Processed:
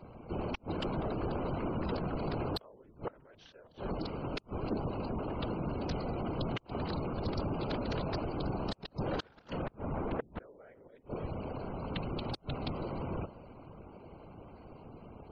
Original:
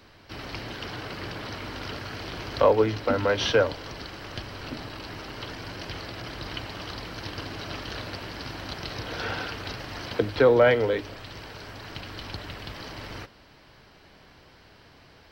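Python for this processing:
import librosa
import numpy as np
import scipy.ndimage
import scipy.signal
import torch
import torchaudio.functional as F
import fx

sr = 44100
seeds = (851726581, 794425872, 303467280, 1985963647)

p1 = fx.wiener(x, sr, points=25)
p2 = fx.over_compress(p1, sr, threshold_db=-27.0, ratio=-0.5)
p3 = p1 + (p2 * librosa.db_to_amplitude(1.5))
p4 = scipy.signal.sosfilt(scipy.signal.butter(2, 44.0, 'highpass', fs=sr, output='sos'), p3)
p5 = p4 + fx.echo_single(p4, sr, ms=287, db=-23.5, dry=0)
p6 = fx.gate_flip(p5, sr, shuts_db=-13.0, range_db=-35)
p7 = fx.whisperise(p6, sr, seeds[0])
p8 = 10.0 ** (-24.0 / 20.0) * np.tanh(p7 / 10.0 ** (-24.0 / 20.0))
p9 = fx.spec_gate(p8, sr, threshold_db=-30, keep='strong')
p10 = fx.cheby2_lowpass(p9, sr, hz=8700.0, order=4, stop_db=70, at=(9.62, 10.85))
y = p10 * librosa.db_to_amplitude(-3.0)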